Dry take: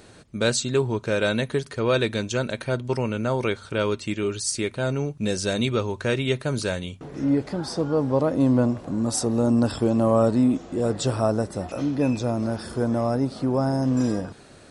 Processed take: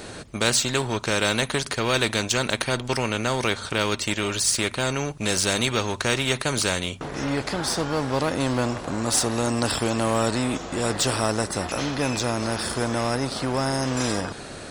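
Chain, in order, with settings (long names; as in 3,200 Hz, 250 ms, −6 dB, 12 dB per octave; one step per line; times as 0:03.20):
in parallel at −6.5 dB: dead-zone distortion −36.5 dBFS
on the sum: every bin compressed towards the loudest bin 2 to 1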